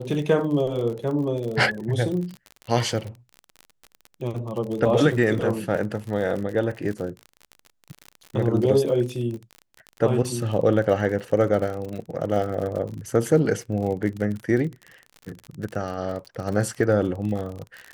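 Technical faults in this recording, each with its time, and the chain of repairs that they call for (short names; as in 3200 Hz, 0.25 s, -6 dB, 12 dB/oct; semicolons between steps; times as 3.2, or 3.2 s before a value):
crackle 47/s -30 dBFS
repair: de-click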